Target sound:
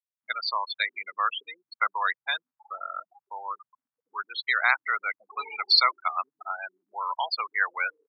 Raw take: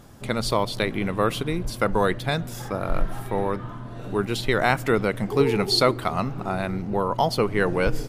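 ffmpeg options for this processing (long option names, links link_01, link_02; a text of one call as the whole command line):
ffmpeg -i in.wav -af "afftfilt=real='re*gte(hypot(re,im),0.0891)':imag='im*gte(hypot(re,im),0.0891)':win_size=1024:overlap=0.75,highpass=frequency=1100:width=0.5412,highpass=frequency=1100:width=1.3066,volume=3.5dB" out.wav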